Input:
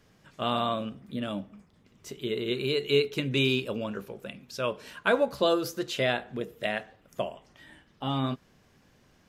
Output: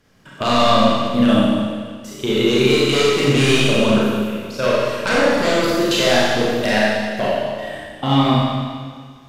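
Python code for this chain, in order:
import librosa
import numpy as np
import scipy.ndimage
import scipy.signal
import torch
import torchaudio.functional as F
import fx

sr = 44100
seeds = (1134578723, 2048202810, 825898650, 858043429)

y = fx.fold_sine(x, sr, drive_db=11, ceiling_db=-10.0)
y = fx.level_steps(y, sr, step_db=20)
y = fx.rev_schroeder(y, sr, rt60_s=1.8, comb_ms=29, drr_db=-6.5)
y = y * librosa.db_to_amplitude(-1.0)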